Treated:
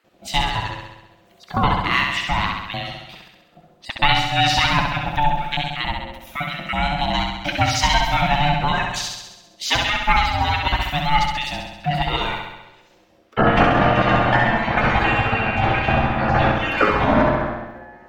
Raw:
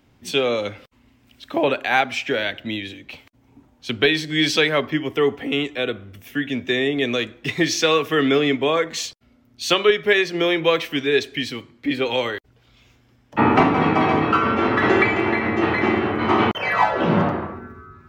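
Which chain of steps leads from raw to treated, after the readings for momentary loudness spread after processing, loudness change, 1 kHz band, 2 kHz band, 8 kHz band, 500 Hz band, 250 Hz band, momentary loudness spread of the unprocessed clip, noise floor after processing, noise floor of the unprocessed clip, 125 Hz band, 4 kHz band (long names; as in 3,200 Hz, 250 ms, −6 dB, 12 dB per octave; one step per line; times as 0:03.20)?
12 LU, +0.5 dB, +4.5 dB, +1.5 dB, +0.5 dB, −4.5 dB, −3.5 dB, 11 LU, −54 dBFS, −58 dBFS, +6.0 dB, +1.5 dB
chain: time-frequency cells dropped at random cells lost 32%
ring modulation 440 Hz
flutter between parallel walls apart 11.4 metres, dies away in 0.98 s
level +3.5 dB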